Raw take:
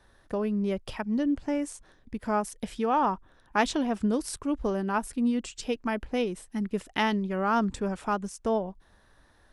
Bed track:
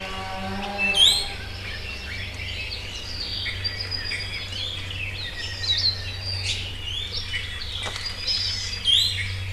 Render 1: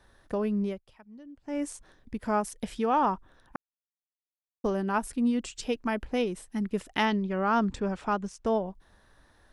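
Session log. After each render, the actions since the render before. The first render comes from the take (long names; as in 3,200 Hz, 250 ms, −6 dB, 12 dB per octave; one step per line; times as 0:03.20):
0:00.62–0:01.62: duck −21 dB, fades 0.19 s
0:03.56–0:04.64: silence
0:07.05–0:08.46: low-pass filter 6,100 Hz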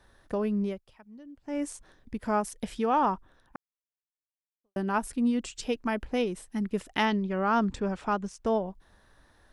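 0:03.14–0:04.76: fade out quadratic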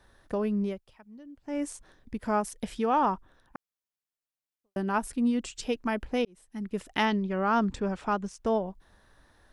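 0:06.25–0:06.91: fade in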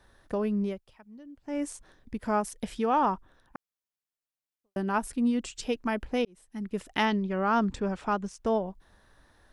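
no processing that can be heard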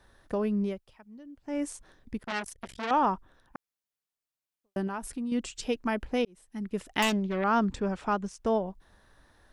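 0:02.19–0:02.91: saturating transformer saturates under 2,700 Hz
0:04.87–0:05.32: downward compressor, threshold −31 dBFS
0:07.02–0:07.44: phase distortion by the signal itself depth 0.35 ms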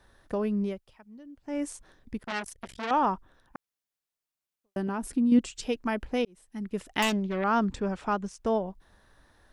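0:04.88–0:05.39: parametric band 270 Hz +10 dB 1.3 octaves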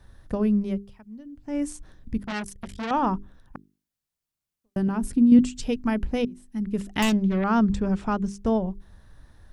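bass and treble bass +14 dB, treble +2 dB
mains-hum notches 50/100/150/200/250/300/350/400 Hz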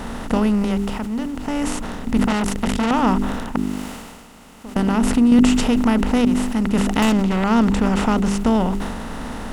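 compressor on every frequency bin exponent 0.4
level that may fall only so fast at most 34 dB per second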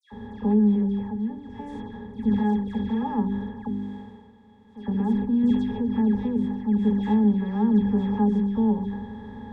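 resonances in every octave G#, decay 0.1 s
all-pass dispersion lows, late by 119 ms, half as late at 2,200 Hz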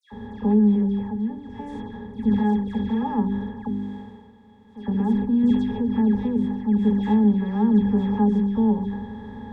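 level +2 dB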